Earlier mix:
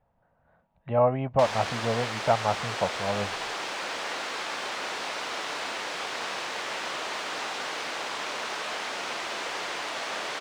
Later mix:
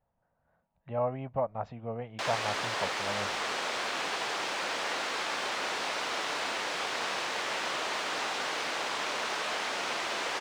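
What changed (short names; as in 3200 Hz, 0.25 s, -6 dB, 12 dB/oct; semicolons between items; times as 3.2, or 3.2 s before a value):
speech -8.5 dB; background: entry +0.80 s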